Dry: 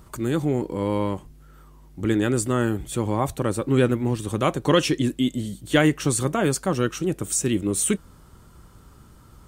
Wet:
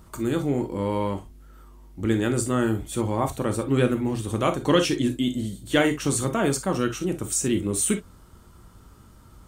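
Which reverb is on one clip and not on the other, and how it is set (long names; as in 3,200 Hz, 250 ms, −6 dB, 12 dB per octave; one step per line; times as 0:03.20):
reverb whose tail is shaped and stops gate 80 ms flat, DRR 6 dB
level −2 dB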